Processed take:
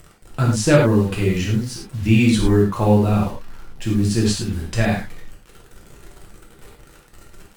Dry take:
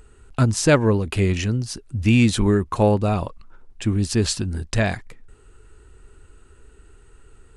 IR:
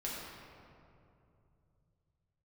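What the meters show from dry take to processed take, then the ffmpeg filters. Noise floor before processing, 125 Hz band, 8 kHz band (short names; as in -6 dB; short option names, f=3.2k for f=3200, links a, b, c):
-51 dBFS, +2.0 dB, -0.5 dB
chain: -filter_complex "[0:a]acrusher=bits=6:mix=0:aa=0.000001[a];[1:a]atrim=start_sample=2205,atrim=end_sample=4410,asetrate=37926,aresample=44100[b];[a][b]afir=irnorm=-1:irlink=0"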